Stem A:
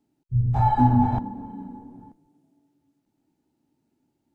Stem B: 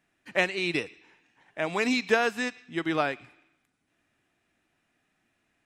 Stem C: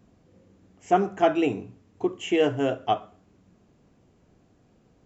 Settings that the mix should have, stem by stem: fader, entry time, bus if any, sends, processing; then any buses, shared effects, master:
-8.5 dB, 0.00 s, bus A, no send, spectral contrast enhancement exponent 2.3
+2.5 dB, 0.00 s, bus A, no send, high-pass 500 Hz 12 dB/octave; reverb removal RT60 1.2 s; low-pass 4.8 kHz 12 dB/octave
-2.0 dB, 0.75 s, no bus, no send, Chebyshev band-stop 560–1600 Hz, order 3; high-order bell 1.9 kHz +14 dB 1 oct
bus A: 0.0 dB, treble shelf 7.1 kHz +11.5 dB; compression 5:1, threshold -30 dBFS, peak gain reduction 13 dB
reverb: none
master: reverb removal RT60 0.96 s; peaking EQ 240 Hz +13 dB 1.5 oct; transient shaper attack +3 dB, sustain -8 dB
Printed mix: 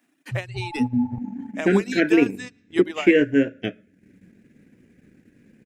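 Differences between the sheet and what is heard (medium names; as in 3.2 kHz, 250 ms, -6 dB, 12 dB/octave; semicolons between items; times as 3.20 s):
stem B: missing low-pass 4.8 kHz 12 dB/octave; master: missing reverb removal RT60 0.96 s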